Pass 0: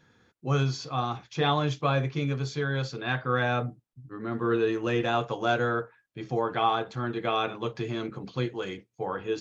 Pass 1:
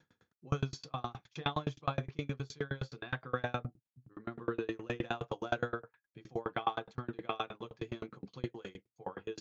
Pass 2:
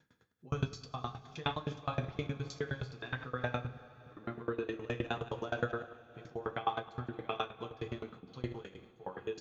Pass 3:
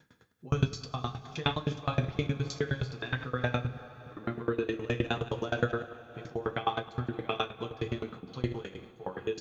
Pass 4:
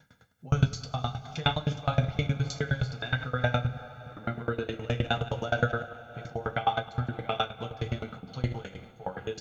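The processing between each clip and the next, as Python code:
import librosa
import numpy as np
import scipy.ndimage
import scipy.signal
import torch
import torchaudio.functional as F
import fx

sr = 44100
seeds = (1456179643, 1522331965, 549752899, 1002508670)

y1 = fx.tremolo_decay(x, sr, direction='decaying', hz=9.6, depth_db=32)
y1 = y1 * 10.0 ** (-2.0 / 20.0)
y2 = fx.reverse_delay(y1, sr, ms=106, wet_db=-14.0)
y2 = fx.rev_double_slope(y2, sr, seeds[0], early_s=0.27, late_s=4.9, knee_db=-20, drr_db=6.5)
y2 = fx.am_noise(y2, sr, seeds[1], hz=5.7, depth_pct=60)
y2 = y2 * 10.0 ** (1.5 / 20.0)
y3 = fx.dynamic_eq(y2, sr, hz=920.0, q=0.78, threshold_db=-48.0, ratio=4.0, max_db=-5)
y3 = y3 * 10.0 ** (7.5 / 20.0)
y4 = y3 + 0.62 * np.pad(y3, (int(1.4 * sr / 1000.0), 0))[:len(y3)]
y4 = y4 * 10.0 ** (1.5 / 20.0)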